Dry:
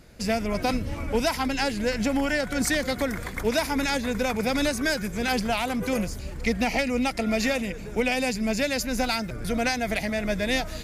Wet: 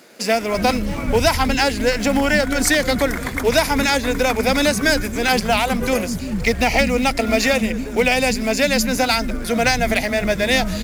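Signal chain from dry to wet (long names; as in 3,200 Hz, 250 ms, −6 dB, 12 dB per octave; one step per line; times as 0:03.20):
in parallel at −11 dB: log-companded quantiser 4 bits
on the sum: multiband delay without the direct sound highs, lows 340 ms, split 230 Hz
level +6.5 dB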